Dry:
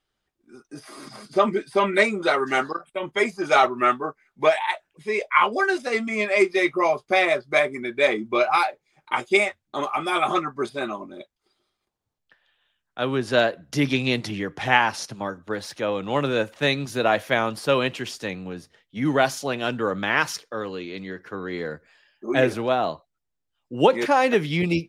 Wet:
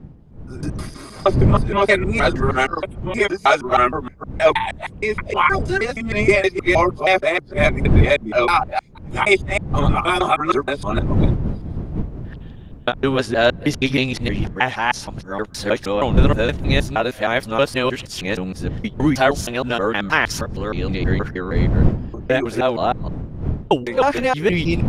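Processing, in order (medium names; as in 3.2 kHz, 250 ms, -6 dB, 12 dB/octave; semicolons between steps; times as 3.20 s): time reversed locally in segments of 157 ms; wind noise 150 Hz -27 dBFS; level rider gain up to 12.5 dB; trim -1 dB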